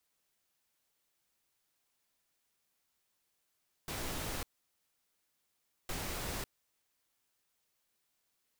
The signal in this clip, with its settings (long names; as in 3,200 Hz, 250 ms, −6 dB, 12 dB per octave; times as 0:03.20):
noise bursts pink, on 0.55 s, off 1.46 s, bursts 2, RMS −39 dBFS